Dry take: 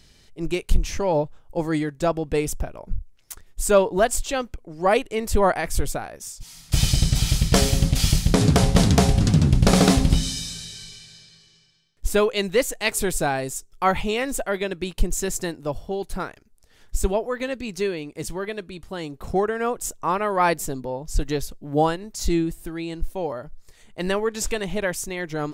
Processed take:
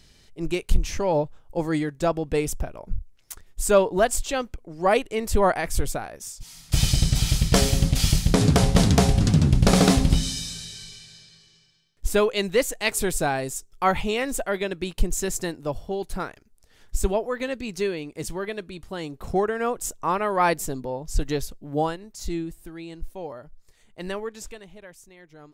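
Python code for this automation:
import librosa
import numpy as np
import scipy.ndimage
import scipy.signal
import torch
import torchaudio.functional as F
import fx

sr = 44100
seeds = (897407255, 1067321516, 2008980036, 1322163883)

y = fx.gain(x, sr, db=fx.line((21.42, -1.0), (22.15, -7.5), (24.22, -7.5), (24.76, -20.0)))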